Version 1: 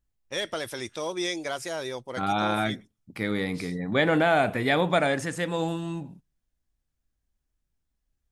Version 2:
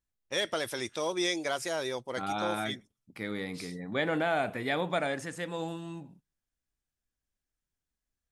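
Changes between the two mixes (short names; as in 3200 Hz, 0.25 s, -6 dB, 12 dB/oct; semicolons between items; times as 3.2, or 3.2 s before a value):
second voice -7.0 dB; master: add low shelf 110 Hz -7 dB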